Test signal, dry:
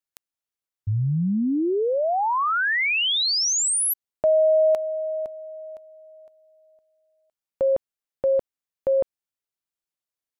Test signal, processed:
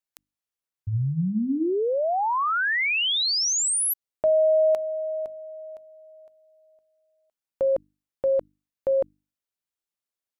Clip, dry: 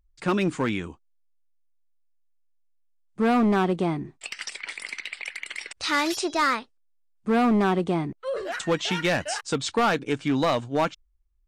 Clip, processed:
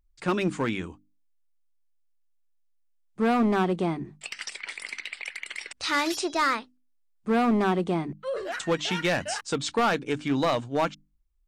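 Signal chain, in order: hum notches 50/100/150/200/250/300 Hz; trim -1.5 dB

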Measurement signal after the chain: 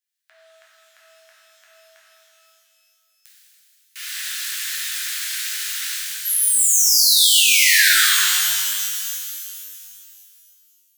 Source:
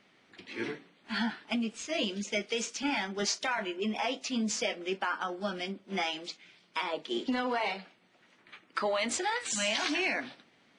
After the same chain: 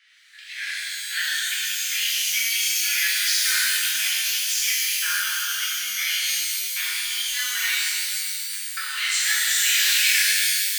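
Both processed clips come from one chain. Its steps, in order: elliptic high-pass 1.6 kHz, stop band 80 dB; in parallel at -1.5 dB: peak limiter -28 dBFS; on the sum: pitch-shifted reverb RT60 2.4 s, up +12 st, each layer -2 dB, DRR -8 dB

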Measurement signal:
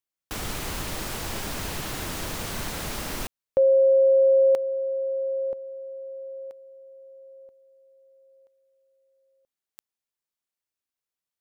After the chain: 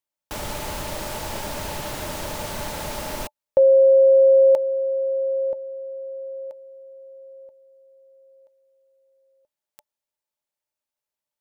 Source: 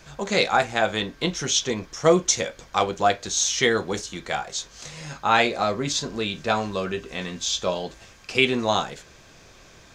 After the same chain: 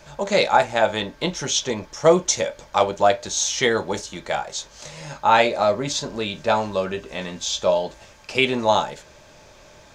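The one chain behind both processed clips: small resonant body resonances 600/870 Hz, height 13 dB, ringing for 60 ms

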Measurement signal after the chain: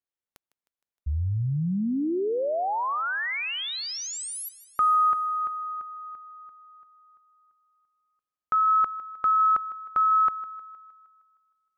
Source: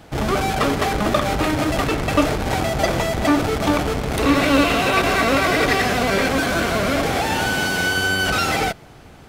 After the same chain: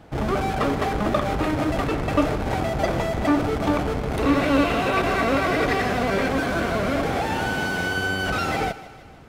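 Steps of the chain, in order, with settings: treble shelf 2.6 kHz -9.5 dB; thinning echo 155 ms, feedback 56%, high-pass 220 Hz, level -16.5 dB; trim -2.5 dB

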